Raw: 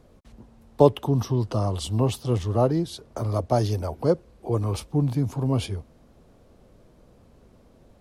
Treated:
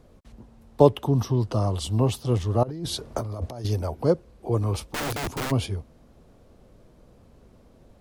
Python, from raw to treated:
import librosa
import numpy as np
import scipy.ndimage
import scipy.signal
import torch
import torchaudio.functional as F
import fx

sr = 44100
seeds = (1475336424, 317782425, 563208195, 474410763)

y = fx.low_shelf(x, sr, hz=100.0, db=2.0)
y = fx.over_compress(y, sr, threshold_db=-32.0, ratio=-1.0, at=(2.63, 3.65))
y = fx.overflow_wrap(y, sr, gain_db=24.0, at=(4.81, 5.5), fade=0.02)